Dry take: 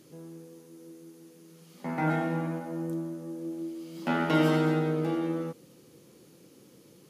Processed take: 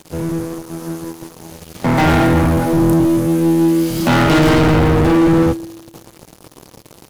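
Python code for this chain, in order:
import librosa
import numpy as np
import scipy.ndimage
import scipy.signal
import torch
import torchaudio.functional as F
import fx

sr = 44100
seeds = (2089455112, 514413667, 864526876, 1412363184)

y = fx.octave_divider(x, sr, octaves=1, level_db=-2.0)
y = fx.high_shelf(y, sr, hz=7500.0, db=8.5, at=(1.97, 4.23))
y = fx.leveller(y, sr, passes=5)
y = fx.comb_fb(y, sr, f0_hz=110.0, decay_s=1.1, harmonics='odd', damping=0.0, mix_pct=40)
y = y * 10.0 ** (8.0 / 20.0)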